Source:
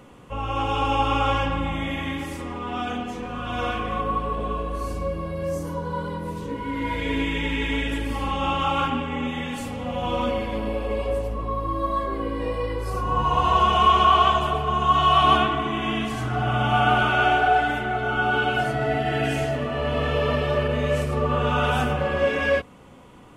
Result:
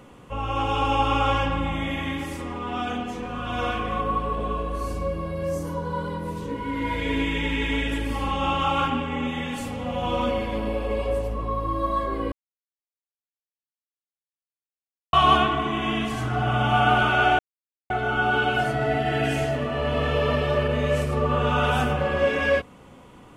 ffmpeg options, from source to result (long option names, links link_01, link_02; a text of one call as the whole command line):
ffmpeg -i in.wav -filter_complex "[0:a]asplit=5[link_01][link_02][link_03][link_04][link_05];[link_01]atrim=end=12.32,asetpts=PTS-STARTPTS,afade=type=out:start_time=12.316:duration=0.004:curve=hsin[link_06];[link_02]atrim=start=12.32:end=15.13,asetpts=PTS-STARTPTS,volume=0[link_07];[link_03]atrim=start=15.13:end=17.39,asetpts=PTS-STARTPTS,afade=type=in:duration=0.004:curve=hsin,afade=type=out:start_time=2.256:duration=0.004:curve=hsin[link_08];[link_04]atrim=start=17.39:end=17.9,asetpts=PTS-STARTPTS,volume=0[link_09];[link_05]atrim=start=17.9,asetpts=PTS-STARTPTS,afade=type=in:duration=0.004:curve=hsin[link_10];[link_06][link_07][link_08][link_09][link_10]concat=n=5:v=0:a=1" out.wav